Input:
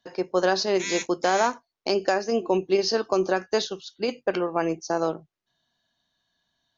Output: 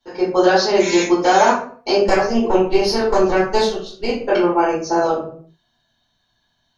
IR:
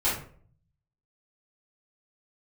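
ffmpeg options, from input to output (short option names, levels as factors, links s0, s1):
-filter_complex "[0:a]asettb=1/sr,asplit=3[s0][s1][s2];[s0]atrim=end=2.044[s3];[s1]atrim=start=2.04:end=4.14,asetpts=PTS-STARTPTS,afade=t=in:d=0.004:c=qsin,afade=t=out:st=2.096:d=0.004:c=qsin,aeval=exprs='0.355*(cos(1*acos(clip(val(0)/0.355,-1,1)))-cos(1*PI/2))+0.0631*(cos(2*acos(clip(val(0)/0.355,-1,1)))-cos(2*PI/2))+0.0282*(cos(3*acos(clip(val(0)/0.355,-1,1)))-cos(3*PI/2))+0.00708*(cos(6*acos(clip(val(0)/0.355,-1,1)))-cos(6*PI/2))':c=same[s4];[s2]atrim=start=4.136[s5];[s3][s4]acrossfade=d=0.004:c1=hsin:c2=qsin[s6];[s6][s5]acrossfade=d=0.004:c1=qsin:c2=hsin[s7];[1:a]atrim=start_sample=2205,afade=t=out:st=0.44:d=0.01,atrim=end_sample=19845[s8];[s7][s8]afir=irnorm=-1:irlink=0,volume=0.75"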